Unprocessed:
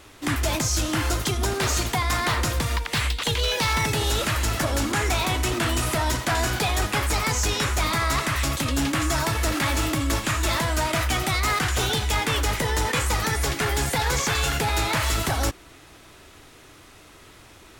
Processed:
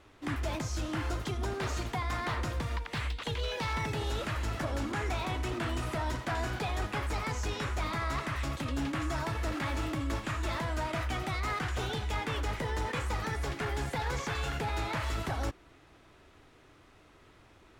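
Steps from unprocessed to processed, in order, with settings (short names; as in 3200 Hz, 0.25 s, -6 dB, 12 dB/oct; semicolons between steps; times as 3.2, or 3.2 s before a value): LPF 2100 Hz 6 dB/oct; gain -8.5 dB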